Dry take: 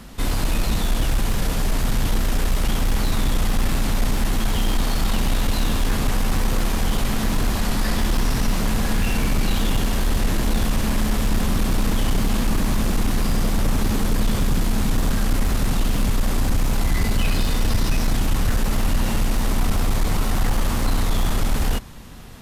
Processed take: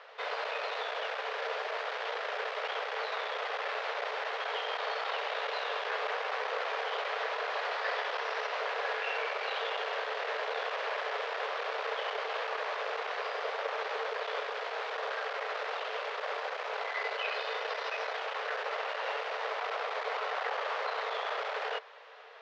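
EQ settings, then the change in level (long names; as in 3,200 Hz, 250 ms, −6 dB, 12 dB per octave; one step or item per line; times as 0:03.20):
Chebyshev high-pass with heavy ripple 430 Hz, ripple 3 dB
Bessel low-pass filter 3,700 Hz, order 4
high-frequency loss of the air 160 metres
0.0 dB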